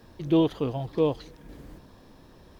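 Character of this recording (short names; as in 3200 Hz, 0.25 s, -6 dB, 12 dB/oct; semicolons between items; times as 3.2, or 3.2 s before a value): noise floor -53 dBFS; spectral tilt -6.5 dB/oct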